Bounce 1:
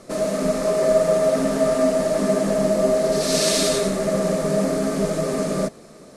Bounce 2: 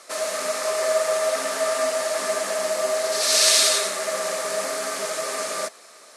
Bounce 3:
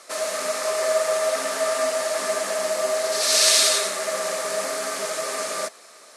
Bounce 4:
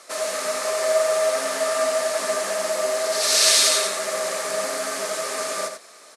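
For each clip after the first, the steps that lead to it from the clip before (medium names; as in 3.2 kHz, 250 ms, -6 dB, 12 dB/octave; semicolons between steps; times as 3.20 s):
high-pass 1.1 kHz 12 dB/octave; trim +5.5 dB
no audible change
delay 90 ms -8 dB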